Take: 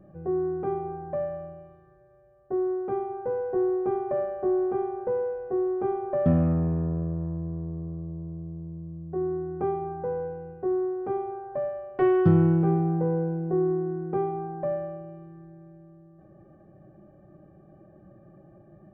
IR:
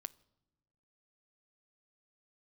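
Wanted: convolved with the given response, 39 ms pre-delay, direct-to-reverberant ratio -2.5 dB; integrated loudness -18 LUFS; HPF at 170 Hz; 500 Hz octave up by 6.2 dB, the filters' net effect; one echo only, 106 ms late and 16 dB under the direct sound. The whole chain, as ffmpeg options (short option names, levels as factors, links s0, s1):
-filter_complex "[0:a]highpass=170,equalizer=f=500:t=o:g=9,aecho=1:1:106:0.158,asplit=2[s0][s1];[1:a]atrim=start_sample=2205,adelay=39[s2];[s1][s2]afir=irnorm=-1:irlink=0,volume=2.11[s3];[s0][s3]amix=inputs=2:normalize=0,volume=1.26"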